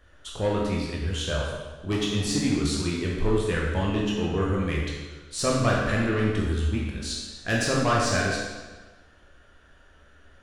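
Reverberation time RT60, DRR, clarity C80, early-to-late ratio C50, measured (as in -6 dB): 1.3 s, -4.0 dB, 2.0 dB, 0.5 dB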